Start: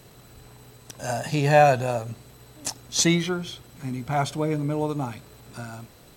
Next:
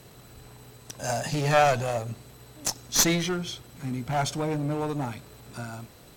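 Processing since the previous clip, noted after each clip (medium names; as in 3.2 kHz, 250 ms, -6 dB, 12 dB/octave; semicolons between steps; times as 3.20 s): dynamic bell 5.9 kHz, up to +6 dB, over -46 dBFS, Q 1.8; one-sided clip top -25.5 dBFS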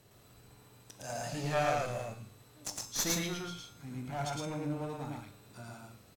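feedback comb 100 Hz, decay 0.83 s, harmonics all, mix 70%; on a send: loudspeakers at several distances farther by 38 m -1 dB, 52 m -10 dB; on the sum: trim -3.5 dB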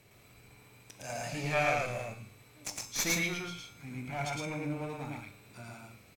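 peaking EQ 2.3 kHz +14.5 dB 0.27 oct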